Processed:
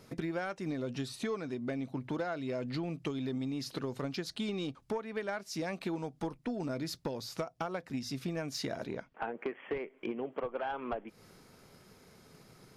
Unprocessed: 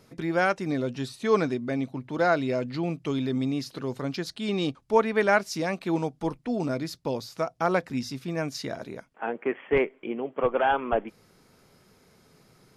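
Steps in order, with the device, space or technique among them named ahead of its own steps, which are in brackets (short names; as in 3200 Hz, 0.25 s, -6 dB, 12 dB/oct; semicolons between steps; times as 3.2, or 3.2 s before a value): drum-bus smash (transient shaper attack +6 dB, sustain +2 dB; compressor 16:1, threshold -31 dBFS, peak gain reduction 21.5 dB; soft clip -25.5 dBFS, distortion -19 dB); 8.85–9.36 LPF 5800 Hz -> 2500 Hz 12 dB/oct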